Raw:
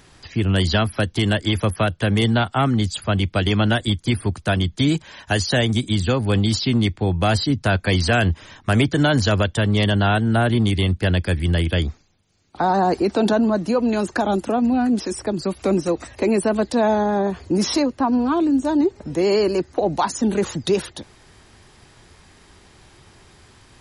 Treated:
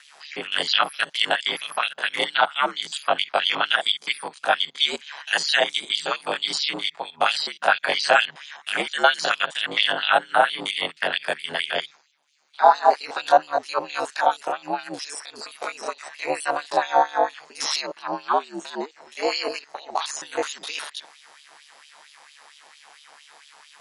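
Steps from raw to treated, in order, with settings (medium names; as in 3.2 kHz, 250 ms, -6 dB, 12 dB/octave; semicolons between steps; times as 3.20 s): spectrogram pixelated in time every 50 ms; ring modulator 73 Hz; LFO high-pass sine 4.4 Hz 700–3300 Hz; trim +4.5 dB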